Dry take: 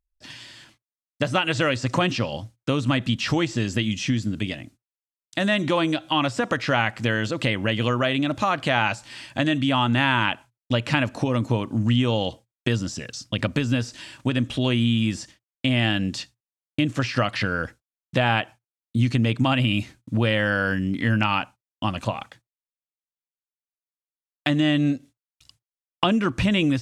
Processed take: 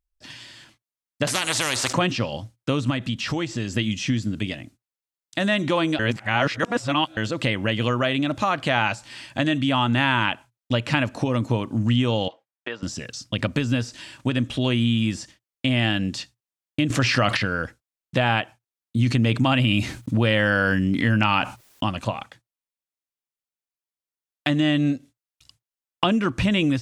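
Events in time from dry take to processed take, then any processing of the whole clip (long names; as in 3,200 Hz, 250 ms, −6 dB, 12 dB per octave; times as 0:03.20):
0:01.27–0:01.93: every bin compressed towards the loudest bin 4 to 1
0:02.90–0:03.76: downward compressor 1.5 to 1, threshold −27 dBFS
0:05.99–0:07.17: reverse
0:12.28–0:12.83: band-pass filter 590–2,200 Hz
0:16.90–0:17.37: envelope flattener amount 70%
0:19.06–0:21.84: envelope flattener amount 50%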